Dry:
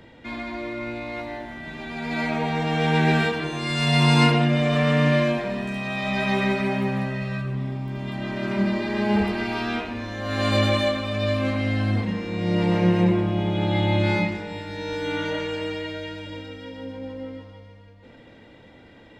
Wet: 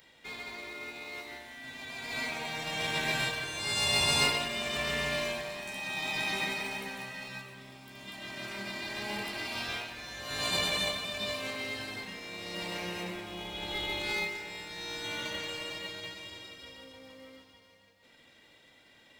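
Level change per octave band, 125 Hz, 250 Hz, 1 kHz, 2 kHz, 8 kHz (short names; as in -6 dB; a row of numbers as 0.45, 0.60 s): -22.5, -20.5, -11.0, -5.5, +5.0 dB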